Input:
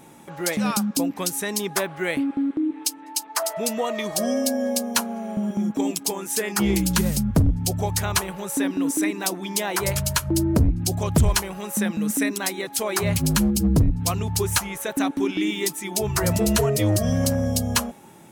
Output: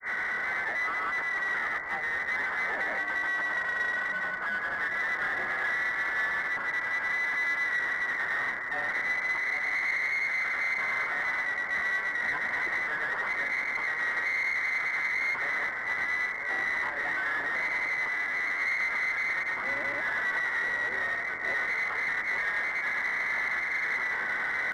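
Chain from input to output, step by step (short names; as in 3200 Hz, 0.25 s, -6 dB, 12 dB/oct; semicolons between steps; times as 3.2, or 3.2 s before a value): infinite clipping; inverted band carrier 2900 Hz; low shelf 140 Hz -4.5 dB; echo with dull and thin repeats by turns 0.71 s, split 1700 Hz, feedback 72%, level -8.5 dB; on a send at -9.5 dB: reverb RT60 4.3 s, pre-delay 78 ms; on the sum: vibrato 3.2 Hz 6.9 cents; grains 0.167 s, grains 14/s, pitch spread up and down by 0 st; in parallel at -3.5 dB: one-sided clip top -28 dBFS; on the sum: speed mistake 45 rpm record played at 33 rpm; low shelf 440 Hz -9 dB; gain -8 dB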